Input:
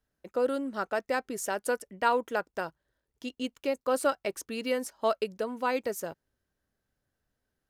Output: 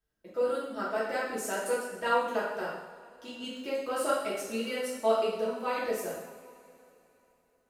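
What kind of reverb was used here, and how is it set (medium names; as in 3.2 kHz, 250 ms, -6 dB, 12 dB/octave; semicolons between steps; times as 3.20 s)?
two-slope reverb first 0.86 s, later 3.5 s, from -19 dB, DRR -8 dB; trim -9 dB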